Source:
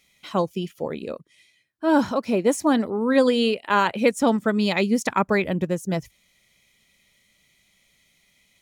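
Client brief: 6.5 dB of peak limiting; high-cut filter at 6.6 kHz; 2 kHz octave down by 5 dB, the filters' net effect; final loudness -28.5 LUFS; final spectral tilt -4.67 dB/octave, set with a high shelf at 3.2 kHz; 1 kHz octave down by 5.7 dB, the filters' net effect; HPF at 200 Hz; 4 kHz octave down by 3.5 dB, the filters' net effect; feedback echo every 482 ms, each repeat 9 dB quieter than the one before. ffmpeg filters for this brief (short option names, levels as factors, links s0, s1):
-af "highpass=200,lowpass=6600,equalizer=f=1000:t=o:g=-6,equalizer=f=2000:t=o:g=-4.5,highshelf=f=3200:g=3.5,equalizer=f=4000:t=o:g=-4.5,alimiter=limit=0.2:level=0:latency=1,aecho=1:1:482|964|1446|1928:0.355|0.124|0.0435|0.0152,volume=0.75"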